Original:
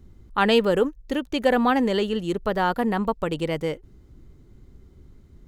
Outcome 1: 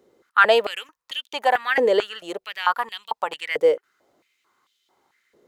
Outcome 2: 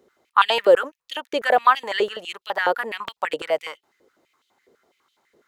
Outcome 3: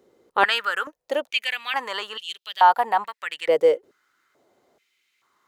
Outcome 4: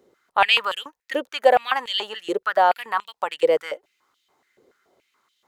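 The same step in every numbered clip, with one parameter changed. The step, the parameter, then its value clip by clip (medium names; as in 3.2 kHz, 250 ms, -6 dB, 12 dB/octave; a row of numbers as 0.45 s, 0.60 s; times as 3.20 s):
step-sequenced high-pass, rate: 4.5 Hz, 12 Hz, 2.3 Hz, 7 Hz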